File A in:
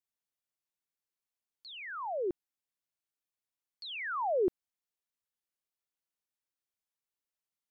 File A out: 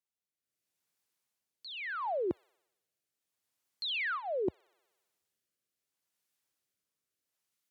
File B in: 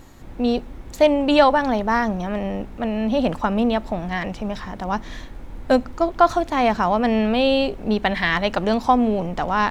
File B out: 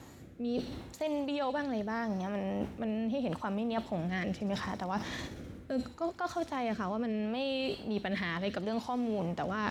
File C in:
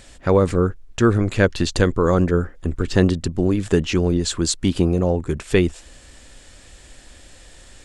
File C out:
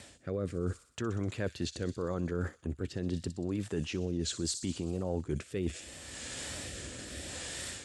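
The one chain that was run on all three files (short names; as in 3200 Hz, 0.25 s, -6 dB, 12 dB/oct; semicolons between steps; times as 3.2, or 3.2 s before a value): on a send: thin delay 62 ms, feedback 70%, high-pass 5000 Hz, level -7 dB; on the sum: AGC gain up to 9 dB; wow and flutter 50 cents; limiter -7.5 dBFS; rotary speaker horn 0.75 Hz; reverse; compressor 16:1, threshold -30 dBFS; reverse; HPF 74 Hz 24 dB/oct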